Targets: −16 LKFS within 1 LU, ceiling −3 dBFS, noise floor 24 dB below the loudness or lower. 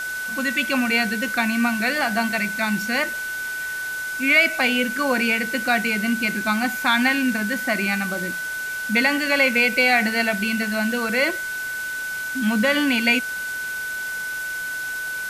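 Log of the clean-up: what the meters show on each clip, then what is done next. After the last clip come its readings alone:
interfering tone 1,500 Hz; level of the tone −26 dBFS; background noise floor −29 dBFS; target noise floor −45 dBFS; integrated loudness −21.0 LKFS; sample peak −5.5 dBFS; target loudness −16.0 LKFS
→ notch filter 1,500 Hz, Q 30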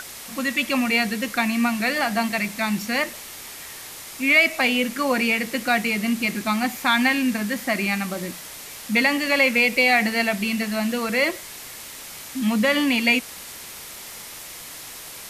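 interfering tone none found; background noise floor −39 dBFS; target noise floor −45 dBFS
→ broadband denoise 6 dB, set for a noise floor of −39 dBFS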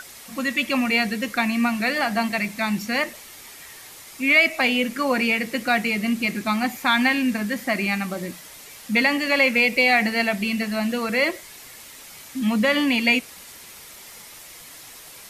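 background noise floor −43 dBFS; target noise floor −45 dBFS
→ broadband denoise 6 dB, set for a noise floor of −43 dBFS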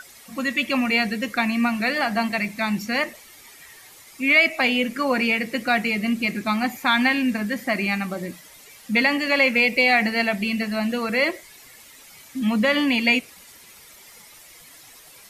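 background noise floor −48 dBFS; integrated loudness −21.0 LKFS; sample peak −6.0 dBFS; target loudness −16.0 LKFS
→ level +5 dB
brickwall limiter −3 dBFS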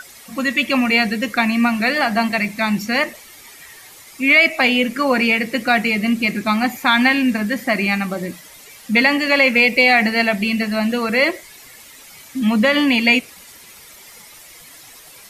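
integrated loudness −16.5 LKFS; sample peak −3.0 dBFS; background noise floor −43 dBFS

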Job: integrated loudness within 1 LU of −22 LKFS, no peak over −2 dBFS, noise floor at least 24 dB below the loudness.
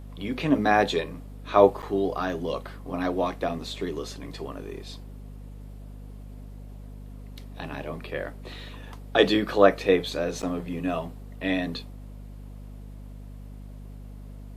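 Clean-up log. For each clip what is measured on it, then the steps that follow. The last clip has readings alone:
number of dropouts 2; longest dropout 8.3 ms; mains hum 50 Hz; hum harmonics up to 250 Hz; level of the hum −39 dBFS; integrated loudness −26.0 LKFS; sample peak −3.5 dBFS; target loudness −22.0 LKFS
→ repair the gap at 0:01.82/0:10.42, 8.3 ms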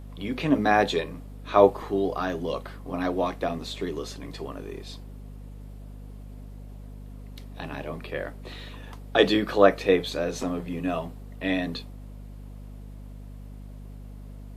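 number of dropouts 0; mains hum 50 Hz; hum harmonics up to 250 Hz; level of the hum −39 dBFS
→ hum removal 50 Hz, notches 5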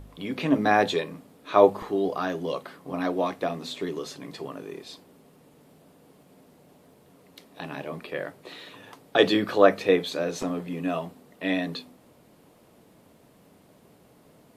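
mains hum none found; integrated loudness −26.0 LKFS; sample peak −3.5 dBFS; target loudness −22.0 LKFS
→ level +4 dB
brickwall limiter −2 dBFS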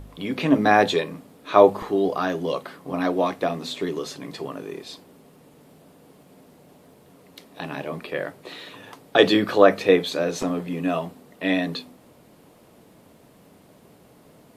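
integrated loudness −22.5 LKFS; sample peak −2.0 dBFS; background noise floor −53 dBFS

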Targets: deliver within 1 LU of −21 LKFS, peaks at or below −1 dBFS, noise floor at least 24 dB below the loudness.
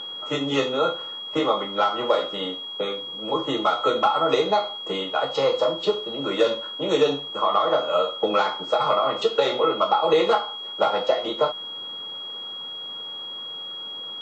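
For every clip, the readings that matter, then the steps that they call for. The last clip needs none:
interfering tone 3,300 Hz; level of the tone −32 dBFS; integrated loudness −24.0 LKFS; sample peak −7.0 dBFS; target loudness −21.0 LKFS
→ notch filter 3,300 Hz, Q 30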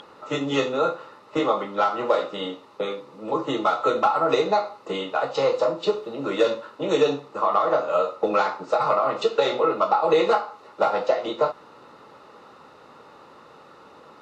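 interfering tone none found; integrated loudness −23.5 LKFS; sample peak −7.0 dBFS; target loudness −21.0 LKFS
→ level +2.5 dB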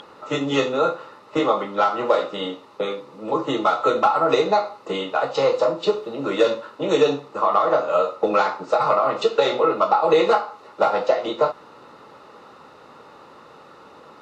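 integrated loudness −21.0 LKFS; sample peak −4.5 dBFS; background noise floor −47 dBFS

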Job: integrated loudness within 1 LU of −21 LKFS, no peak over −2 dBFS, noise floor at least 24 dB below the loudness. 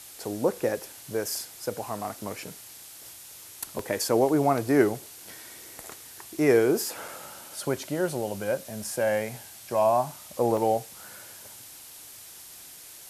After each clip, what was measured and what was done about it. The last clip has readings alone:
number of dropouts 4; longest dropout 3.0 ms; background noise floor −46 dBFS; target noise floor −52 dBFS; integrated loudness −27.5 LKFS; sample peak −8.0 dBFS; target loudness −21.0 LKFS
→ repair the gap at 0:03.79/0:07.08/0:08.84/0:10.57, 3 ms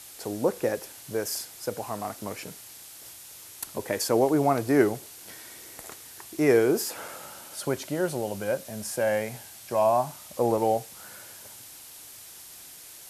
number of dropouts 0; background noise floor −46 dBFS; target noise floor −52 dBFS
→ noise reduction from a noise print 6 dB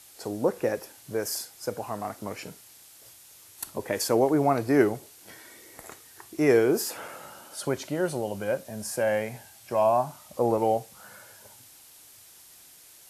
background noise floor −52 dBFS; integrated loudness −27.0 LKFS; sample peak −8.5 dBFS; target loudness −21.0 LKFS
→ level +6 dB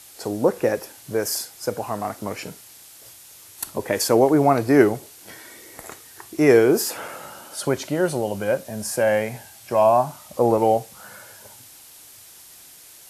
integrated loudness −21.0 LKFS; sample peak −2.5 dBFS; background noise floor −46 dBFS

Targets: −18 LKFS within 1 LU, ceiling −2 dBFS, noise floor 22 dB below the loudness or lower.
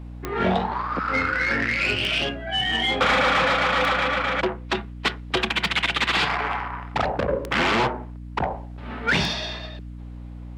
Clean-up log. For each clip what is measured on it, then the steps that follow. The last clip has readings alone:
number of clicks 6; mains hum 60 Hz; hum harmonics up to 300 Hz; level of the hum −34 dBFS; integrated loudness −23.0 LKFS; sample peak −10.5 dBFS; target loudness −18.0 LKFS
→ click removal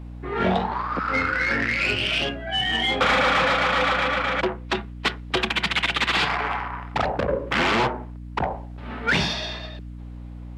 number of clicks 0; mains hum 60 Hz; hum harmonics up to 300 Hz; level of the hum −34 dBFS
→ hum removal 60 Hz, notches 5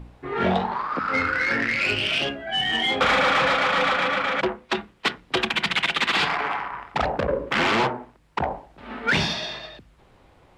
mains hum none found; integrated loudness −23.0 LKFS; sample peak −10.5 dBFS; target loudness −18.0 LKFS
→ level +5 dB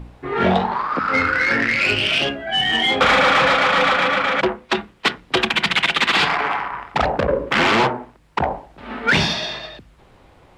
integrated loudness −18.0 LKFS; sample peak −5.5 dBFS; background noise floor −51 dBFS

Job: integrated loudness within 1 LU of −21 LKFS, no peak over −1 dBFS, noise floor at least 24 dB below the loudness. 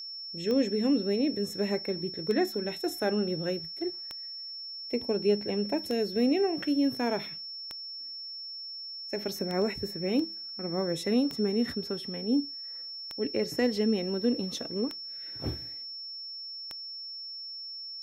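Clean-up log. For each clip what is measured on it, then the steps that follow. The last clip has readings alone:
number of clicks 10; interfering tone 5,400 Hz; level of the tone −38 dBFS; integrated loudness −31.0 LKFS; sample peak −14.0 dBFS; target loudness −21.0 LKFS
→ click removal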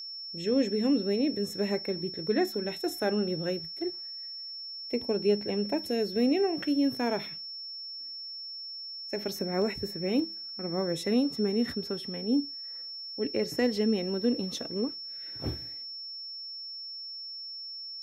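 number of clicks 0; interfering tone 5,400 Hz; level of the tone −38 dBFS
→ notch filter 5,400 Hz, Q 30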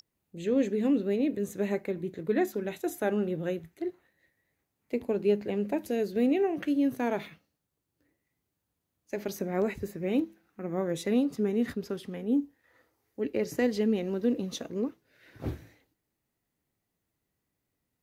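interfering tone none found; integrated loudness −30.5 LKFS; sample peak −14.5 dBFS; target loudness −21.0 LKFS
→ level +9.5 dB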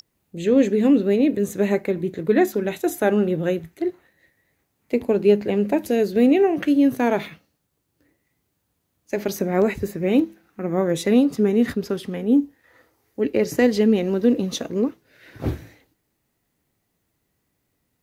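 integrated loudness −21.0 LKFS; sample peak −5.0 dBFS; background noise floor −74 dBFS

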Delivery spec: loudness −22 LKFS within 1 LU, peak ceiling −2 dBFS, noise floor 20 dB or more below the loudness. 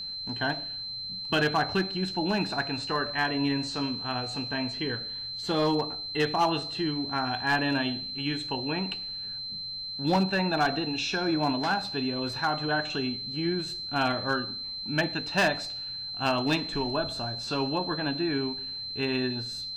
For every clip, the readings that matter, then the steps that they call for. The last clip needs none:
share of clipped samples 0.4%; peaks flattened at −18.0 dBFS; interfering tone 4,100 Hz; level of the tone −34 dBFS; integrated loudness −28.5 LKFS; sample peak −18.0 dBFS; target loudness −22.0 LKFS
→ clipped peaks rebuilt −18 dBFS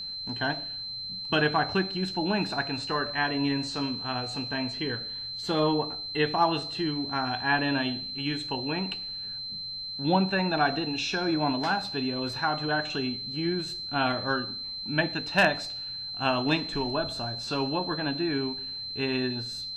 share of clipped samples 0.0%; interfering tone 4,100 Hz; level of the tone −34 dBFS
→ notch filter 4,100 Hz, Q 30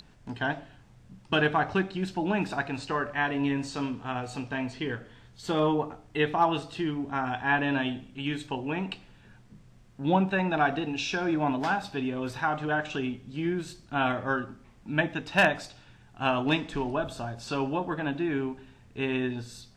interfering tone none found; integrated loudness −29.5 LKFS; sample peak −8.5 dBFS; target loudness −22.0 LKFS
→ level +7.5 dB
brickwall limiter −2 dBFS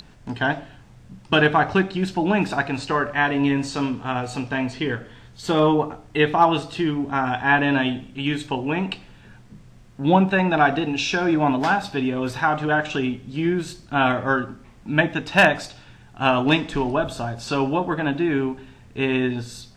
integrated loudness −22.0 LKFS; sample peak −2.0 dBFS; background noise floor −48 dBFS

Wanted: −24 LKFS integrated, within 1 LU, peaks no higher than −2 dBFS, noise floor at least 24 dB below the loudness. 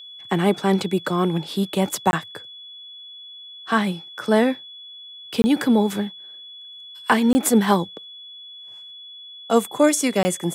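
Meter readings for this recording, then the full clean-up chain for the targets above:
number of dropouts 4; longest dropout 20 ms; interfering tone 3,400 Hz; level of the tone −38 dBFS; integrated loudness −21.0 LKFS; sample peak −5.0 dBFS; target loudness −24.0 LKFS
→ repair the gap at 0:02.11/0:05.42/0:07.33/0:10.23, 20 ms
notch filter 3,400 Hz, Q 30
level −3 dB

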